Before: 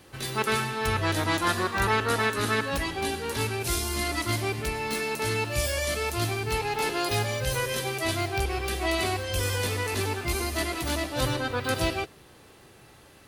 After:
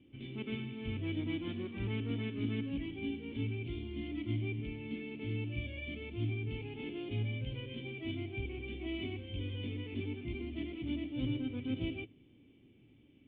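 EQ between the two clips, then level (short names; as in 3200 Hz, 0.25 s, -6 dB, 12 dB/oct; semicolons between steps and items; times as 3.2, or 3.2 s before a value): vocal tract filter i; bell 110 Hz +7 dB 0.2 oct; +1.0 dB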